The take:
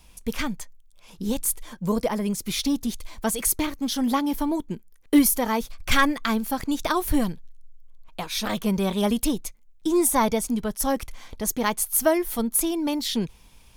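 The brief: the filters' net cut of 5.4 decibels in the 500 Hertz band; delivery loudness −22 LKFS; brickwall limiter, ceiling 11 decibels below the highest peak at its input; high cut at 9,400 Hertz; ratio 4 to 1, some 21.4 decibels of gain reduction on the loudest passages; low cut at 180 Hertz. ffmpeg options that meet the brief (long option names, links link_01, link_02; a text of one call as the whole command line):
ffmpeg -i in.wav -af "highpass=180,lowpass=9400,equalizer=frequency=500:width_type=o:gain=-7.5,acompressor=threshold=-42dB:ratio=4,volume=22dB,alimiter=limit=-12dB:level=0:latency=1" out.wav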